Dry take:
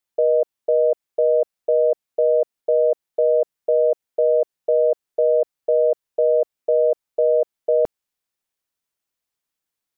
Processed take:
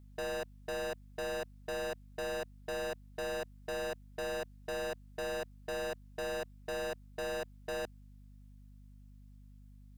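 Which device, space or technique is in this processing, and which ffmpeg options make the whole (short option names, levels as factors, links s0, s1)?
valve amplifier with mains hum: -af "aeval=exprs='(tanh(79.4*val(0)+0.15)-tanh(0.15))/79.4':c=same,aeval=exprs='val(0)+0.00158*(sin(2*PI*50*n/s)+sin(2*PI*2*50*n/s)/2+sin(2*PI*3*50*n/s)/3+sin(2*PI*4*50*n/s)/4+sin(2*PI*5*50*n/s)/5)':c=same,volume=1.26"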